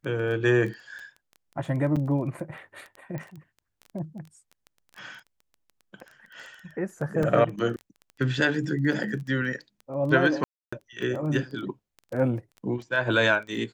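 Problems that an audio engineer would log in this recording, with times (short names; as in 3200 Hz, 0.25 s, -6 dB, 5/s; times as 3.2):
crackle 12/s -34 dBFS
1.96–1.97 gap 5.9 ms
3.18 pop -24 dBFS
7.23 gap 2.3 ms
10.44–10.72 gap 0.285 s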